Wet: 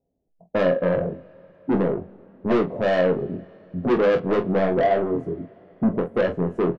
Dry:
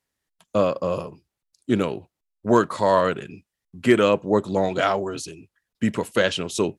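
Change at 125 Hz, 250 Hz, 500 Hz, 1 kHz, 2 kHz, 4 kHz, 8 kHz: +1.5 dB, +0.5 dB, +1.0 dB, -3.5 dB, -3.0 dB, -9.5 dB, under -20 dB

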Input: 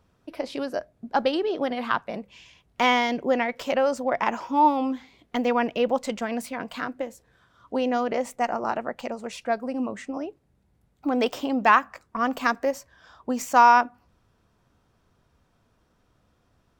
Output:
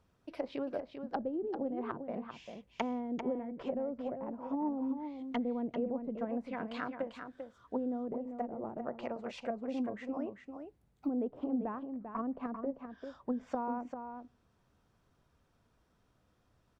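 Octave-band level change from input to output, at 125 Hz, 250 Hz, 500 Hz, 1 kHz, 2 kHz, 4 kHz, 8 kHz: -6.5 dB, -7.0 dB, -12.0 dB, -19.5 dB, -22.0 dB, -20.5 dB, under -25 dB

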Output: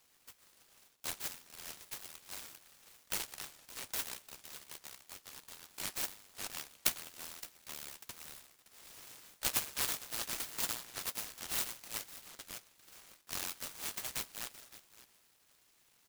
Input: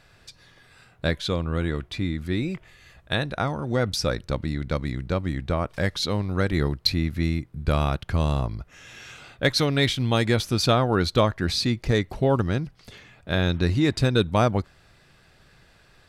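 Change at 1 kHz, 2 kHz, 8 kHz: -20.0, -16.0, -0.5 dB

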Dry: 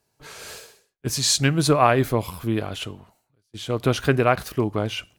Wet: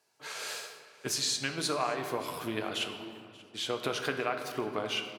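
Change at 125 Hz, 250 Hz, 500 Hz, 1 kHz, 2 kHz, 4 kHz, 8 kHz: -21.0, -13.5, -11.5, -11.0, -7.5, -6.0, -9.0 dB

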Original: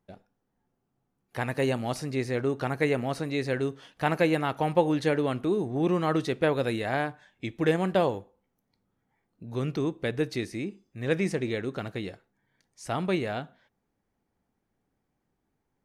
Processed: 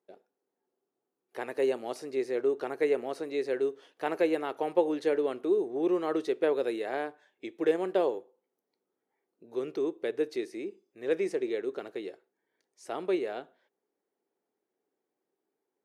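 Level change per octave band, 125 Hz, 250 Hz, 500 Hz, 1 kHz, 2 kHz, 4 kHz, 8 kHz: -23.0 dB, -5.0 dB, 0.0 dB, -6.0 dB, -7.5 dB, -8.0 dB, n/a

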